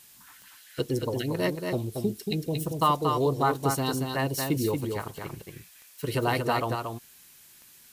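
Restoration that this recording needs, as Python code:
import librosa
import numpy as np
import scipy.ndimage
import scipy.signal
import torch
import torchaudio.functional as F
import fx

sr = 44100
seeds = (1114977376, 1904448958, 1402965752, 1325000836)

y = fx.fix_declick_ar(x, sr, threshold=10.0)
y = fx.noise_reduce(y, sr, print_start_s=7.34, print_end_s=7.84, reduce_db=19.0)
y = fx.fix_echo_inverse(y, sr, delay_ms=230, level_db=-5.0)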